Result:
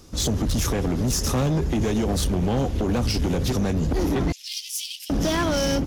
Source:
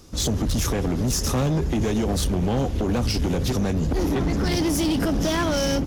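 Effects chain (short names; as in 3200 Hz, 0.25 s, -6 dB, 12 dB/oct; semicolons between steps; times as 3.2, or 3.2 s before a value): 4.32–5.1 steep high-pass 2600 Hz 48 dB/oct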